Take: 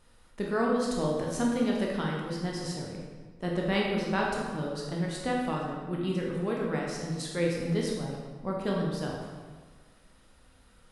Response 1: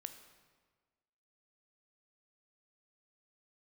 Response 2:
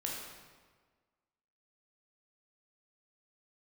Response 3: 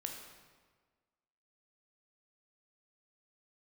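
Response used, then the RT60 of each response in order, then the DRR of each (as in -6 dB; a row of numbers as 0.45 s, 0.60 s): 2; 1.5 s, 1.5 s, 1.5 s; 8.0 dB, -3.0 dB, 2.0 dB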